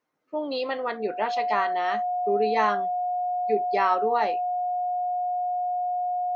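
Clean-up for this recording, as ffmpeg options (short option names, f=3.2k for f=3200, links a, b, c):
-af "bandreject=f=720:w=30"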